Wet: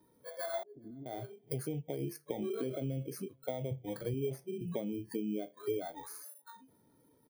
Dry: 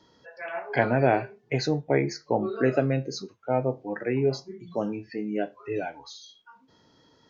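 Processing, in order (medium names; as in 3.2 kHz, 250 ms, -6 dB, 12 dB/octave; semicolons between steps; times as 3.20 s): bit-reversed sample order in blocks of 16 samples; transient shaper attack 0 dB, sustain +5 dB; 3.71–4.14 s: resonant low shelf 170 Hz +10 dB, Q 1.5; peak limiter -16 dBFS, peak gain reduction 8.5 dB; compression 16:1, threshold -38 dBFS, peak gain reduction 18.5 dB; 0.63–1.06 s: four-pole ladder low-pass 350 Hz, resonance 60%; on a send: feedback delay 422 ms, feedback 29%, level -23 dB; on the sum: spectral contrast expander 1.5:1; trim +2 dB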